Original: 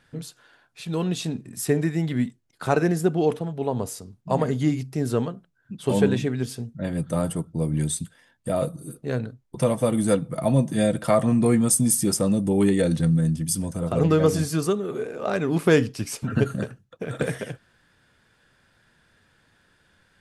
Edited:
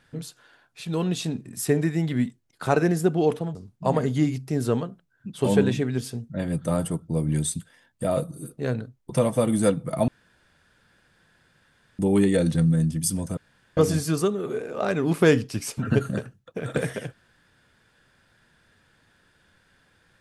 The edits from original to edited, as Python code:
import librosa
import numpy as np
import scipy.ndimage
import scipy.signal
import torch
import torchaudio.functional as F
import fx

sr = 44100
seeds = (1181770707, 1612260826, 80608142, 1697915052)

y = fx.edit(x, sr, fx.cut(start_s=3.55, length_s=0.45),
    fx.room_tone_fill(start_s=10.53, length_s=1.91),
    fx.room_tone_fill(start_s=13.82, length_s=0.4), tone=tone)